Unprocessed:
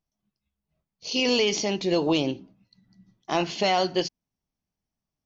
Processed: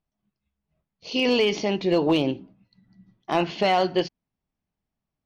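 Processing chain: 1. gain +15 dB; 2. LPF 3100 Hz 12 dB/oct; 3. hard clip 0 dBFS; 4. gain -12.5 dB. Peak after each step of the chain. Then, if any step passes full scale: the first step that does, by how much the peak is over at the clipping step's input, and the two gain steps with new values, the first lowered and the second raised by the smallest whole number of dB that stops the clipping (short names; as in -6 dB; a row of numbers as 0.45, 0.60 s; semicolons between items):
+4.0, +3.0, 0.0, -12.5 dBFS; step 1, 3.0 dB; step 1 +12 dB, step 4 -9.5 dB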